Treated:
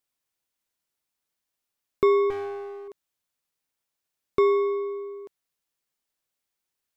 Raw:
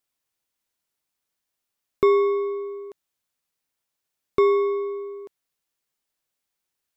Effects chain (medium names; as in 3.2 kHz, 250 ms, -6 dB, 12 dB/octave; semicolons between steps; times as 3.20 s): 2.30–2.88 s: one-sided clip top -38.5 dBFS, bottom -22 dBFS; trim -2 dB